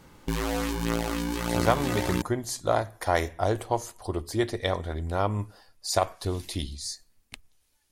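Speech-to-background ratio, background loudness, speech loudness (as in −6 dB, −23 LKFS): 0.0 dB, −29.5 LKFS, −29.5 LKFS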